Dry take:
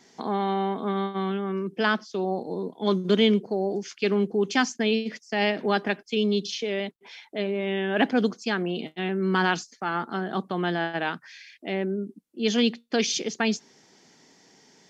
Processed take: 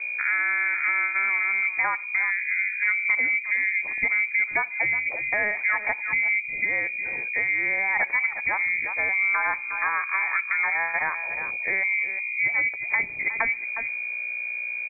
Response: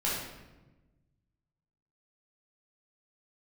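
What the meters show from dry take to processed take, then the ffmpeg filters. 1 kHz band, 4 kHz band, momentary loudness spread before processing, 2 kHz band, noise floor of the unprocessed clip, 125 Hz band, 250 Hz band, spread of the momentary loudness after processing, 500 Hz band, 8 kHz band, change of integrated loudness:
-1.5 dB, under -40 dB, 8 LU, +11.5 dB, -59 dBFS, under -15 dB, -23.5 dB, 5 LU, -14.5 dB, no reading, +3.5 dB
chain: -filter_complex "[0:a]aeval=exprs='val(0)+0.0158*(sin(2*PI*60*n/s)+sin(2*PI*2*60*n/s)/2+sin(2*PI*3*60*n/s)/3+sin(2*PI*4*60*n/s)/4+sin(2*PI*5*60*n/s)/5)':c=same,asplit=2[s0][s1];[s1]adelay=360,highpass=300,lowpass=3400,asoftclip=type=hard:threshold=0.141,volume=0.2[s2];[s0][s2]amix=inputs=2:normalize=0,acompressor=threshold=0.0398:ratio=4,asplit=2[s3][s4];[1:a]atrim=start_sample=2205,highshelf=f=2400:g=-11[s5];[s4][s5]afir=irnorm=-1:irlink=0,volume=0.0376[s6];[s3][s6]amix=inputs=2:normalize=0,lowpass=f=2100:t=q:w=0.5098,lowpass=f=2100:t=q:w=0.6013,lowpass=f=2100:t=q:w=0.9,lowpass=f=2100:t=q:w=2.563,afreqshift=-2500,volume=2.11"

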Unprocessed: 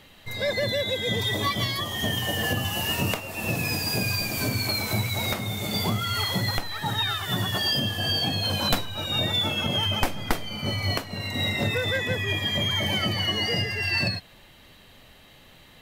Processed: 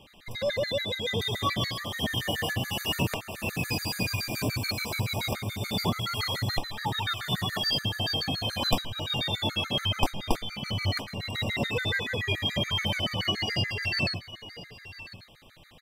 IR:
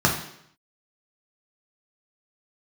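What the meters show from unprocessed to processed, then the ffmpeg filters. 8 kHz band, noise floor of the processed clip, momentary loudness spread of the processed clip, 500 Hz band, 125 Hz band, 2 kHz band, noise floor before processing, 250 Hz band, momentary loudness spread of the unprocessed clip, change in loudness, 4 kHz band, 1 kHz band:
-5.0 dB, -52 dBFS, 6 LU, -3.0 dB, -3.0 dB, -3.5 dB, -52 dBFS, -3.0 dB, 4 LU, -3.5 dB, -3.5 dB, -2.5 dB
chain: -af "highshelf=f=11000:g=-6,aecho=1:1:1051:0.168,afftfilt=real='re*gt(sin(2*PI*7*pts/sr)*(1-2*mod(floor(b*sr/1024/1200),2)),0)':imag='im*gt(sin(2*PI*7*pts/sr)*(1-2*mod(floor(b*sr/1024/1200),2)),0)':win_size=1024:overlap=0.75"

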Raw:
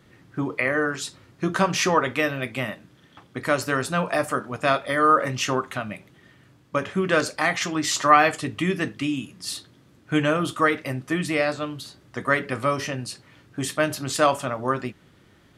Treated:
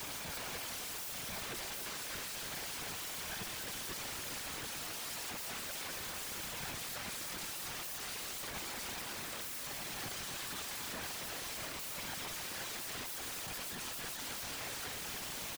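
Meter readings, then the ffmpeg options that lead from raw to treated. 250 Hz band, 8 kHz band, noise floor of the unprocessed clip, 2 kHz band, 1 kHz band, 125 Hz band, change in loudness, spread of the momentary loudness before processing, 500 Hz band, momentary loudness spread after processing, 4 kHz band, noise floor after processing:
-25.0 dB, -6.5 dB, -56 dBFS, -17.5 dB, -22.5 dB, -22.0 dB, -16.0 dB, 13 LU, -25.0 dB, 0 LU, -8.5 dB, -43 dBFS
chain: -filter_complex "[0:a]aeval=exprs='val(0)+0.5*0.0501*sgn(val(0))':c=same,acrossover=split=6600[s0][s1];[s1]acompressor=threshold=0.0158:ratio=4:attack=1:release=60[s2];[s0][s2]amix=inputs=2:normalize=0,equalizer=f=800:t=o:w=0.33:g=9,equalizer=f=1600:t=o:w=0.33:g=12,equalizer=f=2500:t=o:w=0.33:g=-8,equalizer=f=5000:t=o:w=0.33:g=-9,equalizer=f=8000:t=o:w=0.33:g=-7,areverse,acompressor=threshold=0.0447:ratio=16,areverse,alimiter=level_in=1.68:limit=0.0631:level=0:latency=1:release=18,volume=0.596,aeval=exprs='val(0)+0.000891*sin(2*PI*770*n/s)':c=same,aeval=exprs='(mod(94.4*val(0)+1,2)-1)/94.4':c=same,afftfilt=real='hypot(re,im)*cos(2*PI*random(0))':imag='hypot(re,im)*sin(2*PI*random(1))':win_size=512:overlap=0.75,asplit=2[s3][s4];[s4]aecho=0:1:280:0.376[s5];[s3][s5]amix=inputs=2:normalize=0,volume=2.24"

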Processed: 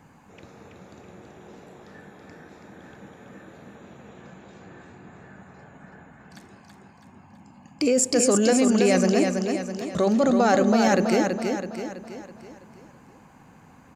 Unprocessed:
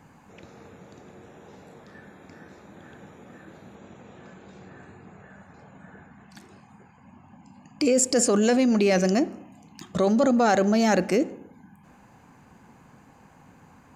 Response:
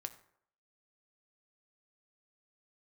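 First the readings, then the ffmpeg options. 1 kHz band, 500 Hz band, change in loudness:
+1.5 dB, +1.5 dB, +0.5 dB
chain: -af "aecho=1:1:328|656|984|1312|1640|1968:0.562|0.276|0.135|0.0662|0.0324|0.0159"

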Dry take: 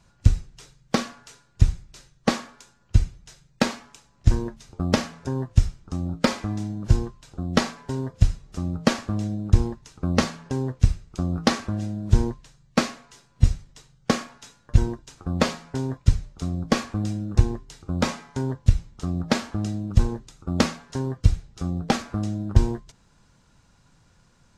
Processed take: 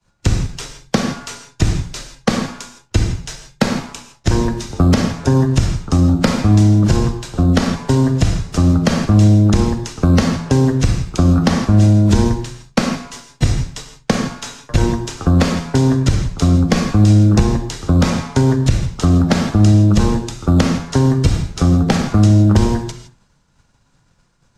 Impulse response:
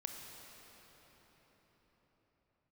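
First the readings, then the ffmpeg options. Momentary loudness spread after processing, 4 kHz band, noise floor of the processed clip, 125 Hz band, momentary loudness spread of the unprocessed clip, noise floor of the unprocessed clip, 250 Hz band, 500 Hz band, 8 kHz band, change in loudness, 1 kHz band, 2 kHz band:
11 LU, +7.5 dB, -58 dBFS, +11.0 dB, 8 LU, -60 dBFS, +12.5 dB, +9.5 dB, +10.0 dB, +10.5 dB, +8.0 dB, +7.0 dB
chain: -filter_complex "[0:a]bandreject=f=60:t=h:w=6,bandreject=f=120:t=h:w=6,bandreject=f=180:t=h:w=6,bandreject=f=240:t=h:w=6,bandreject=f=300:t=h:w=6,bandreject=f=360:t=h:w=6,agate=range=0.0224:threshold=0.00501:ratio=3:detection=peak,acrossover=split=99|260|1800|6400[s0][s1][s2][s3][s4];[s0]acompressor=threshold=0.02:ratio=4[s5];[s1]acompressor=threshold=0.0224:ratio=4[s6];[s2]acompressor=threshold=0.0126:ratio=4[s7];[s3]acompressor=threshold=0.00501:ratio=4[s8];[s4]acompressor=threshold=0.002:ratio=4[s9];[s5][s6][s7][s8][s9]amix=inputs=5:normalize=0[s10];[1:a]atrim=start_sample=2205,afade=t=out:st=0.22:d=0.01,atrim=end_sample=10143[s11];[s10][s11]afir=irnorm=-1:irlink=0,alimiter=level_in=14.1:limit=0.891:release=50:level=0:latency=1,volume=0.891"

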